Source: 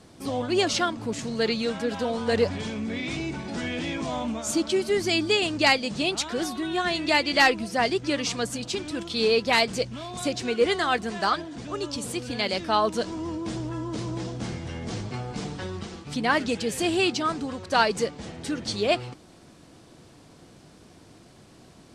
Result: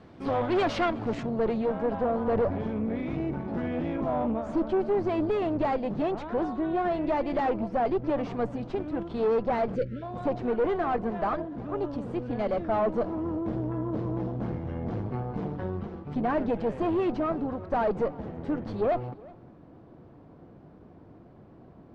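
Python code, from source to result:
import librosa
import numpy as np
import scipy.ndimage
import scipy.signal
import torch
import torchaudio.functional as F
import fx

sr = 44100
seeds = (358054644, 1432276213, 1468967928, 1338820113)

y = fx.dynamic_eq(x, sr, hz=640.0, q=2.6, threshold_db=-39.0, ratio=4.0, max_db=6)
y = fx.tube_stage(y, sr, drive_db=26.0, bias=0.7)
y = fx.lowpass(y, sr, hz=fx.steps((0.0, 2200.0), (1.23, 1000.0)), slope=12)
y = y + 10.0 ** (-23.0 / 20.0) * np.pad(y, (int(366 * sr / 1000.0), 0))[:len(y)]
y = fx.spec_erase(y, sr, start_s=9.76, length_s=0.26, low_hz=590.0, high_hz=1300.0)
y = y * librosa.db_to_amplitude(5.0)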